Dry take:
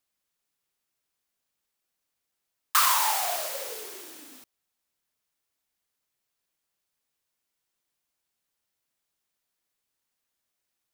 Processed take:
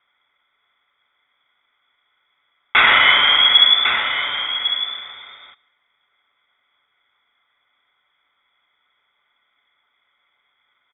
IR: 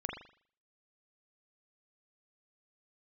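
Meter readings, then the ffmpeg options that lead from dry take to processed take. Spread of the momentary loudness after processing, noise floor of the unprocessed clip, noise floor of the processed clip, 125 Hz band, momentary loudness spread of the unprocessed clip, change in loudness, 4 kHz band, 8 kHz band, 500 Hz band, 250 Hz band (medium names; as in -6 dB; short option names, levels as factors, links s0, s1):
12 LU, -83 dBFS, -69 dBFS, no reading, 20 LU, +11.0 dB, +22.5 dB, under -40 dB, +6.5 dB, +15.0 dB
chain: -filter_complex "[0:a]lowshelf=f=140:g=-11,aecho=1:1:6.6:0.34,aresample=16000,aeval=exprs='clip(val(0),-1,0.0224)':c=same,aresample=44100,asplit=3[s0][s1][s2];[s0]bandpass=f=530:t=q:w=8,volume=1[s3];[s1]bandpass=f=1840:t=q:w=8,volume=0.501[s4];[s2]bandpass=f=2480:t=q:w=8,volume=0.355[s5];[s3][s4][s5]amix=inputs=3:normalize=0,aecho=1:1:1101:0.316,asplit=2[s6][s7];[1:a]atrim=start_sample=2205,adelay=115[s8];[s7][s8]afir=irnorm=-1:irlink=0,volume=0.0631[s9];[s6][s9]amix=inputs=2:normalize=0,lowpass=f=3300:t=q:w=0.5098,lowpass=f=3300:t=q:w=0.6013,lowpass=f=3300:t=q:w=0.9,lowpass=f=3300:t=q:w=2.563,afreqshift=-3900,alimiter=level_in=56.2:limit=0.891:release=50:level=0:latency=1,volume=0.891"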